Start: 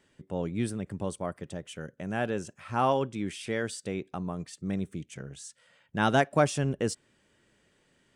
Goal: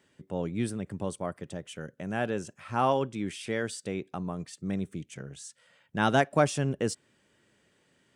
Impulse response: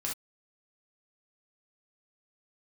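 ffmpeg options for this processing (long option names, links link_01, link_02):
-af "highpass=75"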